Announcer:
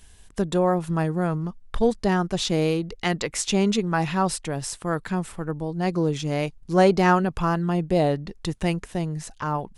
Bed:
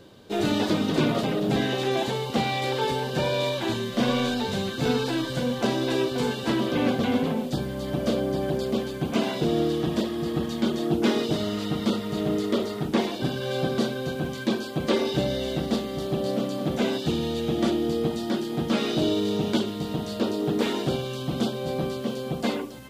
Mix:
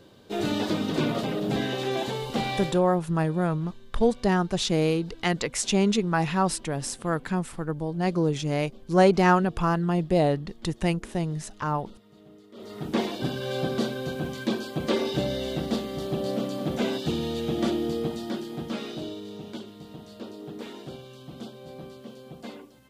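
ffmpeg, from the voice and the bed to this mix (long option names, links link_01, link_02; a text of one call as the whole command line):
ffmpeg -i stem1.wav -i stem2.wav -filter_complex "[0:a]adelay=2200,volume=-1dB[link_01];[1:a]volume=21dB,afade=type=out:start_time=2.56:duration=0.26:silence=0.0707946,afade=type=in:start_time=12.54:duration=0.45:silence=0.0630957,afade=type=out:start_time=17.76:duration=1.44:silence=0.251189[link_02];[link_01][link_02]amix=inputs=2:normalize=0" out.wav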